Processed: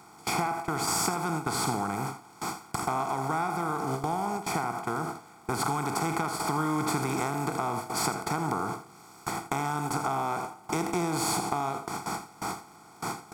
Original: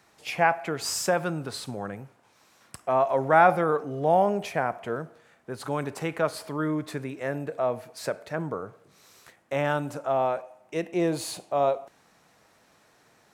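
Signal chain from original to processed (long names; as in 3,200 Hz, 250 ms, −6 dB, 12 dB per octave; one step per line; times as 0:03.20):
compressor on every frequency bin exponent 0.4
downward compressor 20 to 1, threshold −24 dBFS, peak gain reduction 15 dB
noise gate with hold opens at −19 dBFS
parametric band 2,400 Hz −6 dB 2.1 octaves
comb filter 0.9 ms, depth 99%
surface crackle 84 per second −50 dBFS
high-shelf EQ 8,900 Hz +3.5 dB
on a send: single-tap delay 81 ms −12.5 dB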